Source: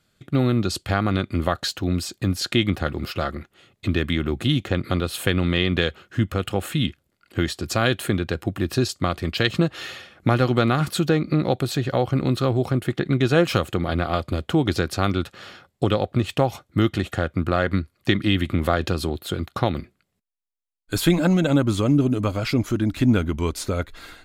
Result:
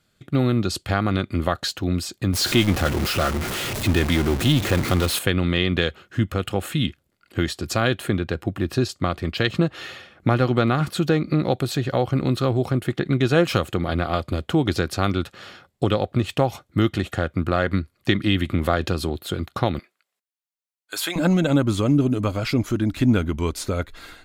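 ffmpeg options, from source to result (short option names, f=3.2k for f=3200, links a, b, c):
-filter_complex "[0:a]asettb=1/sr,asplit=3[a][b][c];[a]atrim=end=2.334[d];[b]atrim=start=2.33:end=5.19,asetpts=PTS-STARTPTS,afade=t=in:d=0.004:c=qsin,afade=t=out:st=2.856:d=0.004:c=qsin,aeval=exprs='val(0)+0.5*0.0841*sgn(val(0))':c=same[e];[c]atrim=start=5.186[f];[d][e]acrossfade=d=0.004:c1=hsin:c2=qsin[g];[g][f]acrossfade=d=0.004:c1=qsin:c2=hsin,asettb=1/sr,asplit=3[h][i][j];[h]atrim=end=7.804[k];[i]atrim=start=7.8:end=11.02,asetpts=PTS-STARTPTS,afade=t=in:d=0.004:c=qsin,afade=t=out:st=3.216:d=0.004:c=qsin,highshelf=f=4k:g=-5.5[l];[j]atrim=start=11.016[m];[k][l]acrossfade=d=0.004:c1=hsin:c2=qsin[n];[n][m]acrossfade=d=0.004:c1=qsin:c2=hsin,asettb=1/sr,asplit=3[o][p][q];[o]atrim=end=19.794[r];[p]atrim=start=19.79:end=21.16,asetpts=PTS-STARTPTS,afade=t=in:d=0.004:c=qsin,afade=t=out:st=1.366:d=0.004:c=qsin,highpass=740[s];[q]atrim=start=21.156[t];[r][s]acrossfade=d=0.004:c1=hsin:c2=qsin[u];[u][t]acrossfade=d=0.004:c1=qsin:c2=hsin"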